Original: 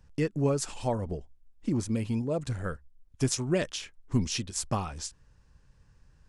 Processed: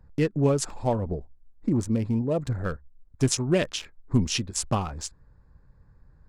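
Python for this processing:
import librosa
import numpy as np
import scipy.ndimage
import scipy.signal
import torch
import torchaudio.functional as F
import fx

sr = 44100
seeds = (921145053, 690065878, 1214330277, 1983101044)

y = fx.wiener(x, sr, points=15)
y = fx.dynamic_eq(y, sr, hz=2900.0, q=2.8, threshold_db=-54.0, ratio=4.0, max_db=4)
y = y * librosa.db_to_amplitude(4.5)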